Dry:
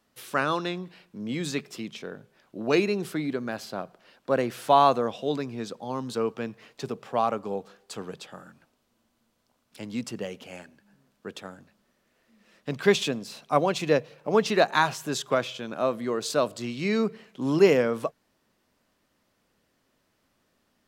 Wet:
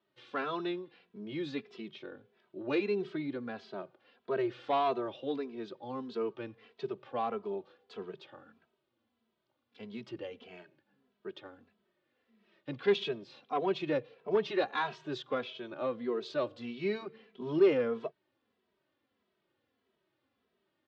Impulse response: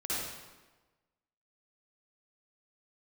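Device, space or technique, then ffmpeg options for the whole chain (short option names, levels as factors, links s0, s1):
barber-pole flanger into a guitar amplifier: -filter_complex "[0:a]asplit=2[s0][s1];[s1]adelay=2.7,afreqshift=-1.6[s2];[s0][s2]amix=inputs=2:normalize=1,asoftclip=type=tanh:threshold=0.15,highpass=89,equalizer=f=170:t=q:w=4:g=-5,equalizer=f=380:t=q:w=4:g=8,equalizer=f=3400:t=q:w=4:g=3,lowpass=f=4000:w=0.5412,lowpass=f=4000:w=1.3066,volume=0.501"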